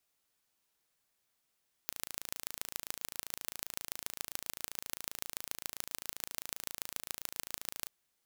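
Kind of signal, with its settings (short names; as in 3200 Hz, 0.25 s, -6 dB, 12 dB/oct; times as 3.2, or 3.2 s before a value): pulse train 27.6/s, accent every 4, -8 dBFS 5.98 s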